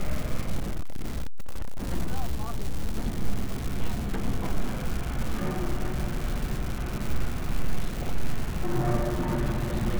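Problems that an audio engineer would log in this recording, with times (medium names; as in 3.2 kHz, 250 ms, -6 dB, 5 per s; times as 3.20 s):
crackle 390 per s -29 dBFS
0.60–1.83 s: clipped -23 dBFS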